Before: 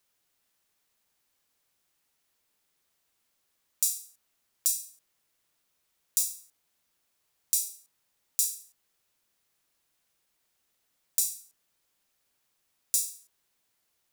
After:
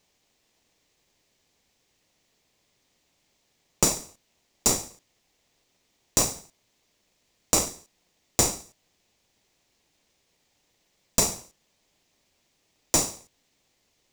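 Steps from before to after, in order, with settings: band shelf 3600 Hz +12 dB 2.4 oct; in parallel at -4 dB: sample-rate reducer 1600 Hz, jitter 20%; on the sum: gain -3.5 dB

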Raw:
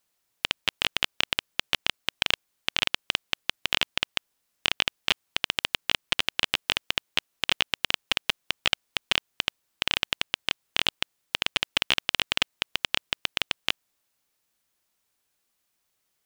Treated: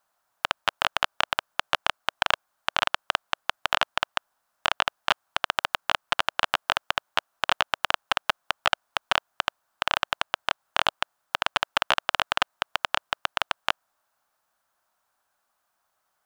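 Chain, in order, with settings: band shelf 980 Hz +14 dB; gain -3 dB

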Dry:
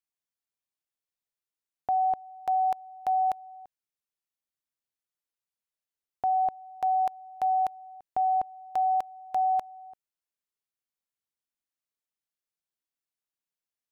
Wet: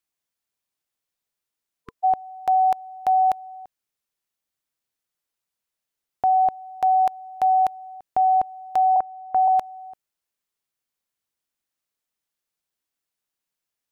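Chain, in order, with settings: 1.82–2.02 spectral repair 460–1000 Hz before; 8.96–9.48 LPF 1600 Hz 24 dB/oct; gain +7 dB

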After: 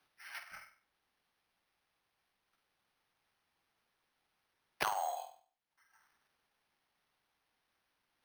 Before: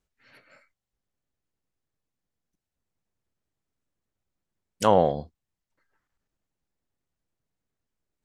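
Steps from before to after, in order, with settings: gate -53 dBFS, range -15 dB; elliptic high-pass 760 Hz, stop band 50 dB; compressor 6:1, threshold -33 dBFS, peak gain reduction 13.5 dB; flutter echo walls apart 8.3 m, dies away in 0.37 s; careless resampling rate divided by 6×, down none, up hold; three-band squash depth 70%; gain +4 dB

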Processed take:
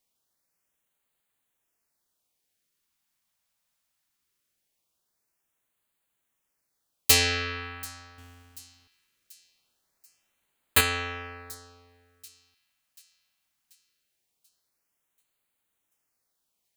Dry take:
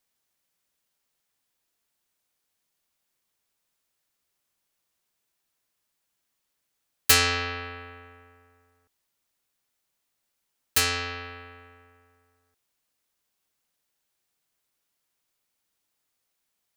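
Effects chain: 8.18–10.81 half-waves squared off; thin delay 0.736 s, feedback 50%, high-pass 5100 Hz, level -19.5 dB; LFO notch sine 0.21 Hz 360–5600 Hz

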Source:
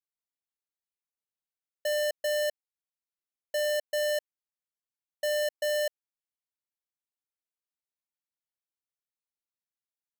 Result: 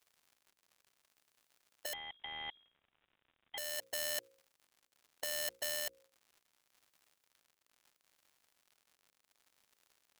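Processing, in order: tremolo 0.72 Hz, depth 69%; crackle 130/s -67 dBFS; low shelf 340 Hz -5.5 dB; notches 60/120/180/240/300/360/420/480/540 Hz; dynamic EQ 500 Hz, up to -6 dB, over -45 dBFS, Q 0.79; 1.93–3.58 inverted band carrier 3800 Hz; spectral compressor 2:1; gain +7 dB

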